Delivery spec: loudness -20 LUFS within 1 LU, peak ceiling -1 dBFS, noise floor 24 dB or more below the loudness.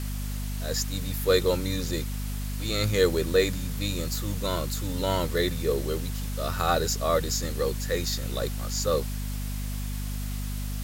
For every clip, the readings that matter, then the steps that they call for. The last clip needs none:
hum 50 Hz; harmonics up to 250 Hz; hum level -29 dBFS; noise floor -31 dBFS; noise floor target -52 dBFS; loudness -28.0 LUFS; peak -8.5 dBFS; loudness target -20.0 LUFS
-> de-hum 50 Hz, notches 5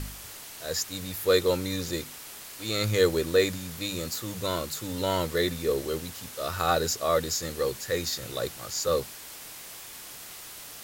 hum none; noise floor -44 dBFS; noise floor target -53 dBFS
-> denoiser 9 dB, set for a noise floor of -44 dBFS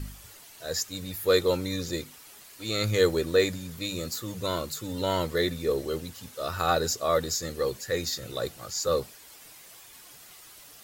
noise floor -50 dBFS; noise floor target -53 dBFS
-> denoiser 6 dB, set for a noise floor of -50 dBFS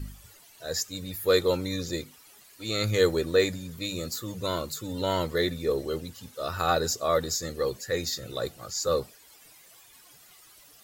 noise floor -55 dBFS; loudness -28.5 LUFS; peak -10.0 dBFS; loudness target -20.0 LUFS
-> gain +8.5 dB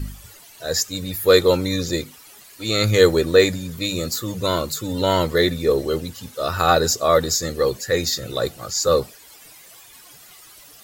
loudness -20.0 LUFS; peak -1.5 dBFS; noise floor -46 dBFS

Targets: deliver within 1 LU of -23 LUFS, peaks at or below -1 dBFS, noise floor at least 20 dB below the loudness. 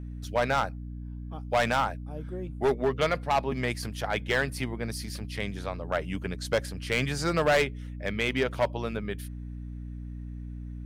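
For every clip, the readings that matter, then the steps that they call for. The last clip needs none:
clipped 0.9%; flat tops at -18.5 dBFS; hum 60 Hz; harmonics up to 300 Hz; hum level -36 dBFS; loudness -29.5 LUFS; peak -18.5 dBFS; loudness target -23.0 LUFS
-> clip repair -18.5 dBFS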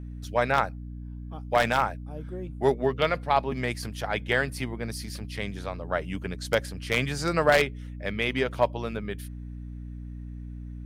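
clipped 0.0%; hum 60 Hz; harmonics up to 300 Hz; hum level -35 dBFS
-> notches 60/120/180/240/300 Hz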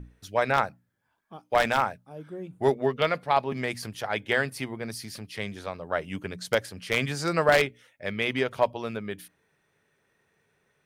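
hum none; loudness -27.5 LUFS; peak -9.0 dBFS; loudness target -23.0 LUFS
-> gain +4.5 dB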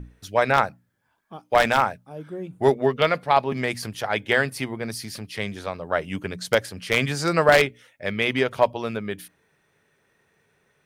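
loudness -23.0 LUFS; peak -4.5 dBFS; noise floor -68 dBFS

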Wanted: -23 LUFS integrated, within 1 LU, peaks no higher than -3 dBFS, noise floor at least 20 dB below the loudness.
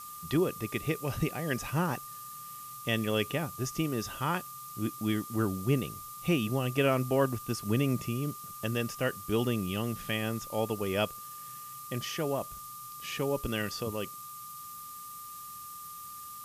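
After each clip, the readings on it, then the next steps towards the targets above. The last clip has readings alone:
steady tone 1200 Hz; tone level -44 dBFS; noise floor -45 dBFS; noise floor target -53 dBFS; loudness -33.0 LUFS; peak -14.5 dBFS; loudness target -23.0 LUFS
-> notch 1200 Hz, Q 30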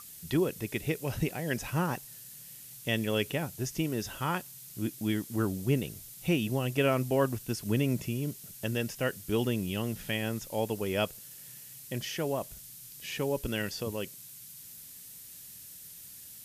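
steady tone none; noise floor -49 dBFS; noise floor target -53 dBFS
-> noise print and reduce 6 dB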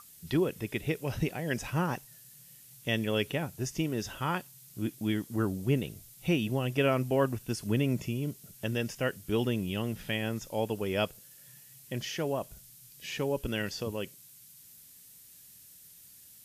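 noise floor -55 dBFS; loudness -32.5 LUFS; peak -15.0 dBFS; loudness target -23.0 LUFS
-> gain +9.5 dB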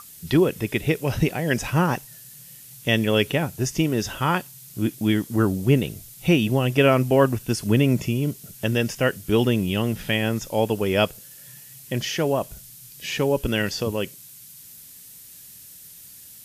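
loudness -23.0 LUFS; peak -5.5 dBFS; noise floor -45 dBFS

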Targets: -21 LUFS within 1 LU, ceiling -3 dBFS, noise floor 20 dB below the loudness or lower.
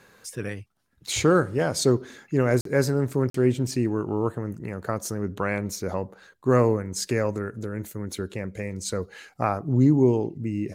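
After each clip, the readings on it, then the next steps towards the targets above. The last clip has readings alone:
dropouts 2; longest dropout 43 ms; loudness -25.5 LUFS; peak -6.5 dBFS; loudness target -21.0 LUFS
-> interpolate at 2.61/3.3, 43 ms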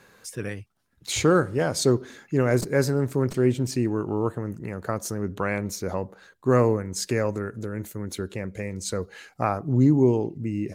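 dropouts 0; loudness -25.5 LUFS; peak -6.5 dBFS; loudness target -21.0 LUFS
-> gain +4.5 dB; limiter -3 dBFS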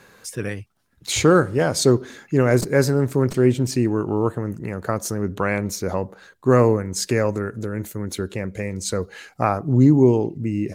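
loudness -21.0 LUFS; peak -3.0 dBFS; noise floor -56 dBFS

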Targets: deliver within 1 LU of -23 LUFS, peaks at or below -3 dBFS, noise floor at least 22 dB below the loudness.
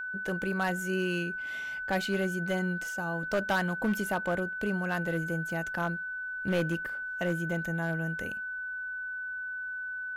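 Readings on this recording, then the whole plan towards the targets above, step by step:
clipped 0.8%; flat tops at -22.0 dBFS; steady tone 1500 Hz; tone level -34 dBFS; loudness -32.0 LUFS; peak -22.0 dBFS; loudness target -23.0 LUFS
-> clip repair -22 dBFS; notch 1500 Hz, Q 30; gain +9 dB

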